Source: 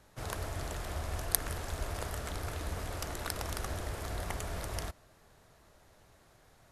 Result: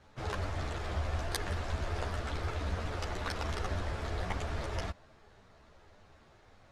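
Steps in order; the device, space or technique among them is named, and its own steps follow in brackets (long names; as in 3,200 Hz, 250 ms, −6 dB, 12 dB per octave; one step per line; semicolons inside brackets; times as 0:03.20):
string-machine ensemble chorus (string-ensemble chorus; low-pass filter 4,500 Hz 12 dB per octave)
level +5.5 dB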